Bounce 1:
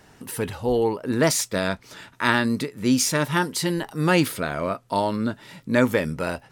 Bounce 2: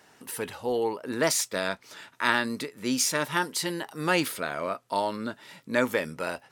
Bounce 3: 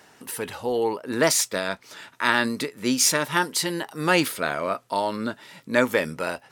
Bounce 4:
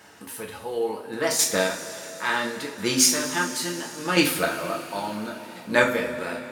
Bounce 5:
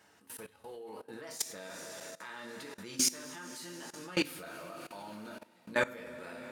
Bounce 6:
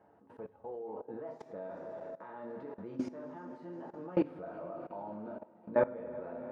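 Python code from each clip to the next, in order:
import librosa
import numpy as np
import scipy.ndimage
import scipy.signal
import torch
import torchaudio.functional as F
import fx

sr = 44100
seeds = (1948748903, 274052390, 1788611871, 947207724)

y1 = fx.highpass(x, sr, hz=450.0, slope=6)
y1 = y1 * 10.0 ** (-2.5 / 20.0)
y2 = fx.am_noise(y1, sr, seeds[0], hz=5.7, depth_pct=60)
y2 = y2 * 10.0 ** (8.0 / 20.0)
y3 = fx.chopper(y2, sr, hz=0.72, depth_pct=60, duty_pct=20)
y3 = fx.rev_double_slope(y3, sr, seeds[1], early_s=0.32, late_s=4.6, knee_db=-19, drr_db=-2.0)
y4 = fx.level_steps(y3, sr, step_db=19)
y4 = y4 * 10.0 ** (-7.5 / 20.0)
y5 = fx.lowpass_res(y4, sr, hz=730.0, q=1.5)
y5 = fx.echo_feedback(y5, sr, ms=366, feedback_pct=59, wet_db=-23.0)
y5 = y5 * 10.0 ** (1.5 / 20.0)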